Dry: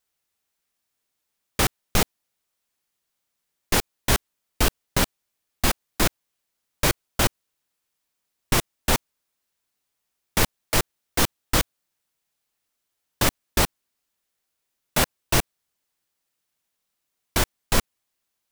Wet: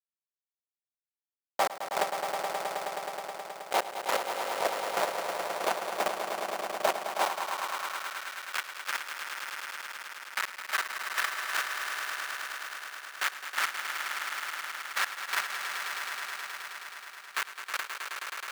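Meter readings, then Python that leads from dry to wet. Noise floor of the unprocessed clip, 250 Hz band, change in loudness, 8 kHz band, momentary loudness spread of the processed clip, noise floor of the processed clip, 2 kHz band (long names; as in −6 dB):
−80 dBFS, −18.5 dB, −8.0 dB, −11.0 dB, 8 LU, below −85 dBFS, −1.0 dB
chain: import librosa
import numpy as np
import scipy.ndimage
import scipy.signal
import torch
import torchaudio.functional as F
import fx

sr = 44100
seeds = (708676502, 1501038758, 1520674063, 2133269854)

p1 = x + 0.93 * np.pad(x, (int(5.2 * sr / 1000.0), 0))[:len(x)]
p2 = fx.level_steps(p1, sr, step_db=12)
p3 = p1 + (p2 * librosa.db_to_amplitude(-0.5))
p4 = fx.schmitt(p3, sr, flips_db=-11.0)
p5 = p4 + fx.echo_swell(p4, sr, ms=106, loudest=5, wet_db=-8.0, dry=0)
p6 = fx.filter_sweep_highpass(p5, sr, from_hz=660.0, to_hz=1500.0, start_s=6.89, end_s=8.3, q=2.2)
y = p6 * librosa.db_to_amplitude(-2.5)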